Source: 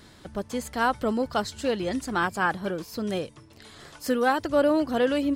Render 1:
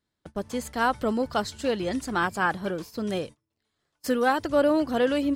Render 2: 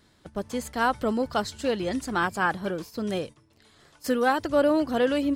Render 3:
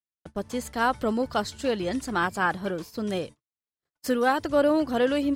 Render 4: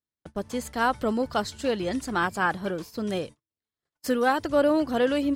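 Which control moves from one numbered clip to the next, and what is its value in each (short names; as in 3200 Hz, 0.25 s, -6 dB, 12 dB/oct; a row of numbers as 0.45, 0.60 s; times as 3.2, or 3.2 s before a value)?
gate, range: -31, -10, -59, -47 dB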